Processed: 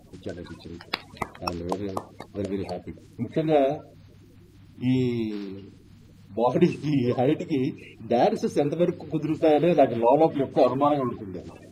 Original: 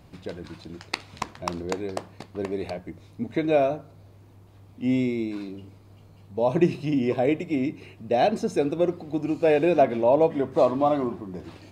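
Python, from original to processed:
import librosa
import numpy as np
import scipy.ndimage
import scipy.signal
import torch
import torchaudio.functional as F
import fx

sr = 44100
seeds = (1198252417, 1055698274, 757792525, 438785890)

y = fx.spec_quant(x, sr, step_db=30)
y = y * 10.0 ** (1.0 / 20.0)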